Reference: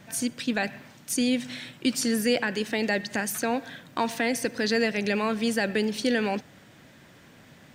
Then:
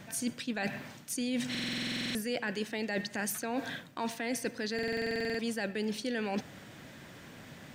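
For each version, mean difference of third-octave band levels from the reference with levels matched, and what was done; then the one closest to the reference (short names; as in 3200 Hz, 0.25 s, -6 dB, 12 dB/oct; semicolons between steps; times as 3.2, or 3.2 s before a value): 5.5 dB: reverse; compressor 10:1, threshold -33 dBFS, peak gain reduction 14.5 dB; reverse; stuck buffer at 1.5/4.74, samples 2048, times 13; gain +2.5 dB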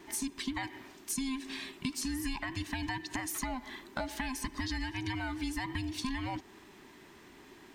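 7.5 dB: band inversion scrambler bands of 500 Hz; compressor, threshold -30 dBFS, peak gain reduction 11 dB; gain -2.5 dB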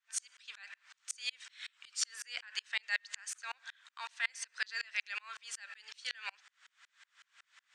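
14.5 dB: elliptic band-pass 1200–8000 Hz, stop band 70 dB; dB-ramp tremolo swelling 5.4 Hz, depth 36 dB; gain +2 dB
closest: first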